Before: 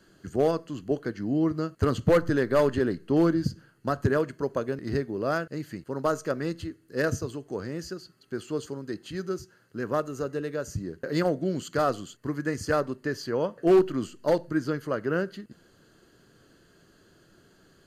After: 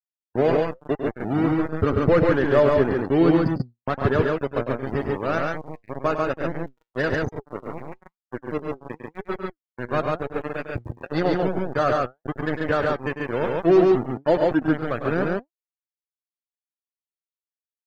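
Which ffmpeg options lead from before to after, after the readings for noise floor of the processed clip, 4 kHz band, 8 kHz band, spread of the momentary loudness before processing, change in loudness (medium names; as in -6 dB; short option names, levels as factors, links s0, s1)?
under -85 dBFS, +2.0 dB, under -10 dB, 13 LU, +5.0 dB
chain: -af "lowpass=4700,aeval=exprs='val(0)*gte(abs(val(0)),0.0473)':c=same,flanger=delay=2.2:depth=6.3:regen=83:speed=0.97:shape=sinusoidal,afftdn=nr=29:nf=-41,aecho=1:1:102|139.9:0.355|0.794,volume=2.37"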